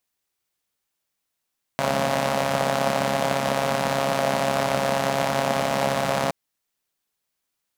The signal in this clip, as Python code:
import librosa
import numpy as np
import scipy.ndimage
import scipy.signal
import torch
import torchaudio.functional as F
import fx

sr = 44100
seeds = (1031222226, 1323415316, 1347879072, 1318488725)

y = fx.engine_four(sr, seeds[0], length_s=4.52, rpm=4100, resonances_hz=(210.0, 600.0))